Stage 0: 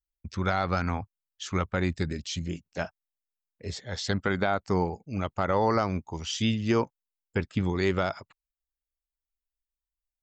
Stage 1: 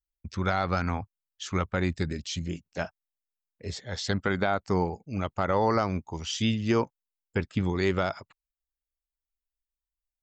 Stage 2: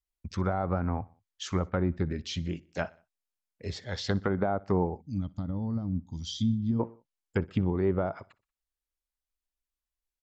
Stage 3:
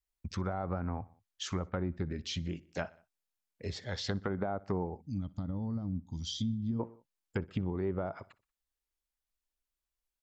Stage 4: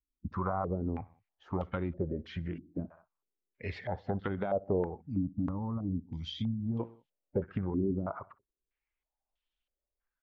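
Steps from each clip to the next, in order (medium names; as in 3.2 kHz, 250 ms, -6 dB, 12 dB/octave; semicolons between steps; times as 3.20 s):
no audible change
low-pass that closes with the level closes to 840 Hz, closed at -23 dBFS; feedback delay 61 ms, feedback 48%, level -23 dB; time-frequency box 5.01–6.80 s, 310–3100 Hz -20 dB
compression 2:1, threshold -35 dBFS, peak gain reduction 8 dB
coarse spectral quantiser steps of 15 dB; step-sequenced low-pass 3.1 Hz 280–3200 Hz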